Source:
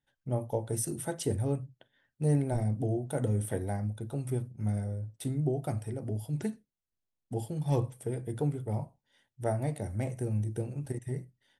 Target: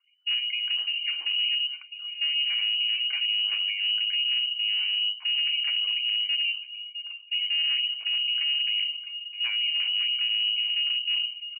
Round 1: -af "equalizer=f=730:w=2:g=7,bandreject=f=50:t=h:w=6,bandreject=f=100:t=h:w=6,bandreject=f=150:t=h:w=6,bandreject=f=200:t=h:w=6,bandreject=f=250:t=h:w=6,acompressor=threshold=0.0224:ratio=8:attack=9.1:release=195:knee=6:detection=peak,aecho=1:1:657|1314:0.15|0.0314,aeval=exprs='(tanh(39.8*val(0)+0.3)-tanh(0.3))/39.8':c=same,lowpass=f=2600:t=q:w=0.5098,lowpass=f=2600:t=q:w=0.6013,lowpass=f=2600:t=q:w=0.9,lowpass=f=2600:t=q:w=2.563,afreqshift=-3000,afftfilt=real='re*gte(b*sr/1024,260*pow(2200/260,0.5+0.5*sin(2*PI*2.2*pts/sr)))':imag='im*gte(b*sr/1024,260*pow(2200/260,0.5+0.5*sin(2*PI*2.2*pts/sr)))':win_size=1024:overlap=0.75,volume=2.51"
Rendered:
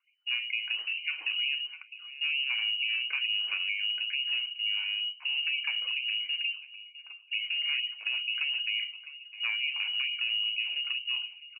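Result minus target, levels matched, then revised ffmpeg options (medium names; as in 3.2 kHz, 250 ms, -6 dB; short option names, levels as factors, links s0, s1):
250 Hz band +7.0 dB
-af "equalizer=f=730:w=2:g=7,bandreject=f=50:t=h:w=6,bandreject=f=100:t=h:w=6,bandreject=f=150:t=h:w=6,bandreject=f=200:t=h:w=6,bandreject=f=250:t=h:w=6,acompressor=threshold=0.0224:ratio=8:attack=9.1:release=195:knee=6:detection=peak,lowshelf=f=230:t=q:w=3:g=8,aecho=1:1:657|1314:0.15|0.0314,aeval=exprs='(tanh(39.8*val(0)+0.3)-tanh(0.3))/39.8':c=same,lowpass=f=2600:t=q:w=0.5098,lowpass=f=2600:t=q:w=0.6013,lowpass=f=2600:t=q:w=0.9,lowpass=f=2600:t=q:w=2.563,afreqshift=-3000,afftfilt=real='re*gte(b*sr/1024,260*pow(2200/260,0.5+0.5*sin(2*PI*2.2*pts/sr)))':imag='im*gte(b*sr/1024,260*pow(2200/260,0.5+0.5*sin(2*PI*2.2*pts/sr)))':win_size=1024:overlap=0.75,volume=2.51"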